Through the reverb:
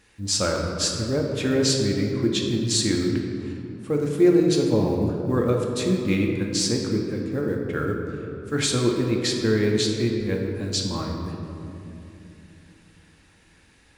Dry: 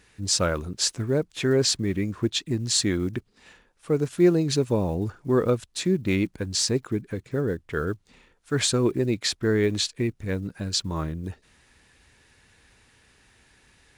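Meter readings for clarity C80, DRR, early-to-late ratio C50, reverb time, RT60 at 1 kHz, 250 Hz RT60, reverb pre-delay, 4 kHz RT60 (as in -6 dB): 4.0 dB, 0.0 dB, 3.0 dB, 2.8 s, 2.5 s, 4.1 s, 4 ms, 1.4 s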